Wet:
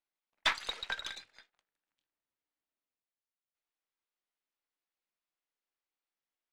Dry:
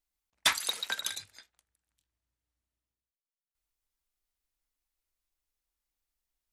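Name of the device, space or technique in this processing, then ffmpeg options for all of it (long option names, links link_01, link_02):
crystal radio: -af "highpass=280,lowpass=3400,aeval=exprs='if(lt(val(0),0),0.708*val(0),val(0))':channel_layout=same"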